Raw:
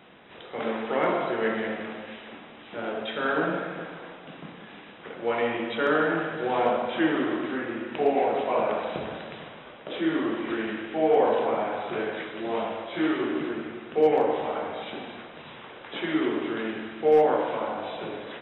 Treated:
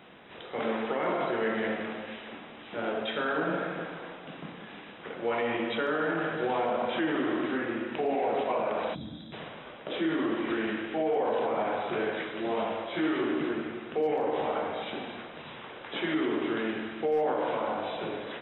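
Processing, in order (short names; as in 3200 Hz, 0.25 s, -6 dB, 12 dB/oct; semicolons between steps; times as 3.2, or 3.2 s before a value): limiter -20.5 dBFS, peak gain reduction 9 dB; spectral gain 8.95–9.33, 340–3200 Hz -18 dB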